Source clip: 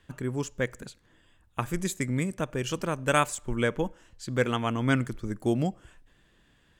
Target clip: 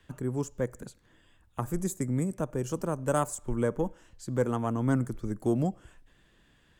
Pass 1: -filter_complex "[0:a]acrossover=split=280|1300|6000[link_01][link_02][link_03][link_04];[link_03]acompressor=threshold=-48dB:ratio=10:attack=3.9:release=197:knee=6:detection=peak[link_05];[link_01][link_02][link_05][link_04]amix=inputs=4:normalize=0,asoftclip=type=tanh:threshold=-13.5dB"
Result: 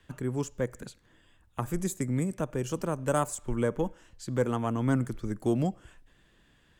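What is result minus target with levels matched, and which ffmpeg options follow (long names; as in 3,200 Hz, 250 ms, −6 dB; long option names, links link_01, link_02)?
downward compressor: peak gain reduction −10.5 dB
-filter_complex "[0:a]acrossover=split=280|1300|6000[link_01][link_02][link_03][link_04];[link_03]acompressor=threshold=-59.5dB:ratio=10:attack=3.9:release=197:knee=6:detection=peak[link_05];[link_01][link_02][link_05][link_04]amix=inputs=4:normalize=0,asoftclip=type=tanh:threshold=-13.5dB"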